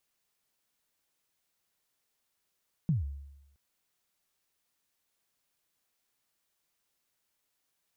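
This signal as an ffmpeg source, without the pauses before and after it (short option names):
-f lavfi -i "aevalsrc='0.0794*pow(10,-3*t/0.93)*sin(2*PI*(180*0.146/log(70/180)*(exp(log(70/180)*min(t,0.146)/0.146)-1)+70*max(t-0.146,0)))':d=0.67:s=44100"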